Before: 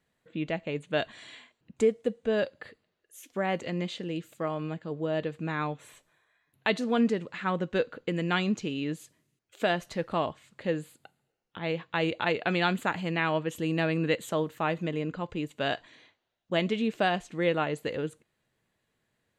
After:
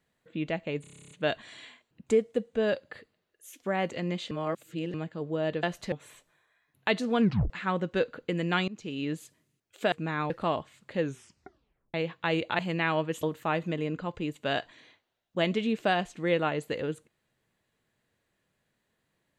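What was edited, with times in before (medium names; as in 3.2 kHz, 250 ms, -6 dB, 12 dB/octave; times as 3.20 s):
0.81 s: stutter 0.03 s, 11 plays
4.01–4.64 s: reverse
5.33–5.71 s: swap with 9.71–10.00 s
7.01 s: tape stop 0.28 s
8.47–8.82 s: fade in, from -23 dB
10.71 s: tape stop 0.93 s
12.29–12.96 s: delete
13.60–14.38 s: delete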